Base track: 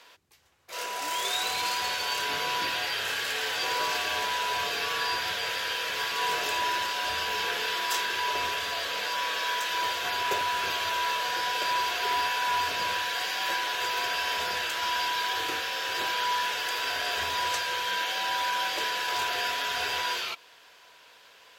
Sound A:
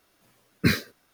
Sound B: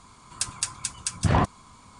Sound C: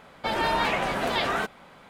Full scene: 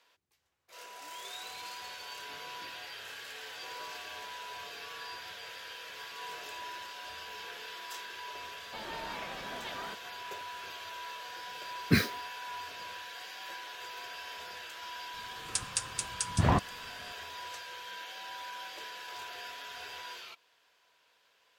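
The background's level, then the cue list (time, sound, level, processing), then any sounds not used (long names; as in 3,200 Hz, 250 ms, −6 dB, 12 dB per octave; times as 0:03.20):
base track −14.5 dB
0:08.49: mix in C −17 dB
0:11.27: mix in A −3.5 dB
0:15.14: mix in B −4.5 dB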